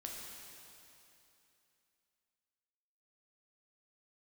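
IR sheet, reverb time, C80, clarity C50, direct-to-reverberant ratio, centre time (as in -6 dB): 2.9 s, 1.0 dB, 0.0 dB, -2.0 dB, 0.134 s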